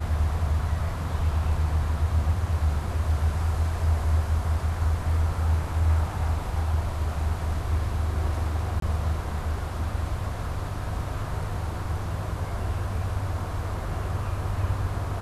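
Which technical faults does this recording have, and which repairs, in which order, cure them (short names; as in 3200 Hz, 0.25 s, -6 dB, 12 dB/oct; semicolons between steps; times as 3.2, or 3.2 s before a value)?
8.8–8.82 gap 23 ms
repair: interpolate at 8.8, 23 ms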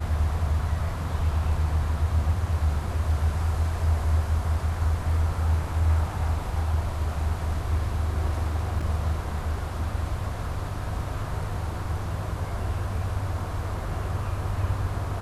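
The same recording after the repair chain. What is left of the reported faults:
none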